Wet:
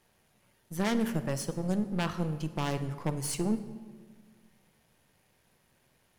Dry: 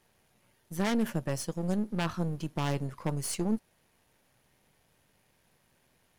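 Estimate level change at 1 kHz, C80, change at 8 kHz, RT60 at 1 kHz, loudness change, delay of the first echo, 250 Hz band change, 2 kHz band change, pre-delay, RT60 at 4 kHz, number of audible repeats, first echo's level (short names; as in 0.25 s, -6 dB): +0.5 dB, 13.5 dB, 0.0 dB, 1.4 s, 0.0 dB, none, +0.5 dB, +0.5 dB, 32 ms, 0.95 s, none, none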